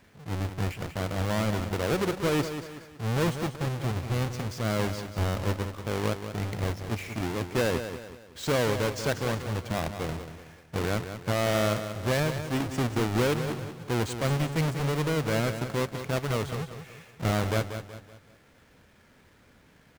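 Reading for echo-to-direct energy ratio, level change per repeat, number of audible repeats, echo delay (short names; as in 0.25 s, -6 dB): -8.5 dB, -7.5 dB, 4, 0.187 s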